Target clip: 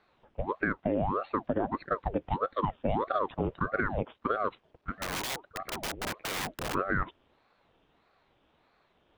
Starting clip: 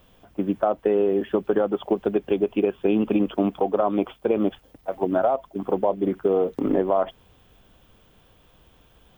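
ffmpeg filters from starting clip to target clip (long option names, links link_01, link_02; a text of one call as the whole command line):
ffmpeg -i in.wav -filter_complex "[0:a]highpass=120,lowpass=3300,asplit=3[link_01][link_02][link_03];[link_01]afade=type=out:start_time=5:duration=0.02[link_04];[link_02]aeval=exprs='(mod(10.6*val(0)+1,2)-1)/10.6':channel_layout=same,afade=type=in:start_time=5:duration=0.02,afade=type=out:start_time=6.73:duration=0.02[link_05];[link_03]afade=type=in:start_time=6.73:duration=0.02[link_06];[link_04][link_05][link_06]amix=inputs=3:normalize=0,aeval=exprs='val(0)*sin(2*PI*540*n/s+540*0.8/1.6*sin(2*PI*1.6*n/s))':channel_layout=same,volume=-5.5dB" out.wav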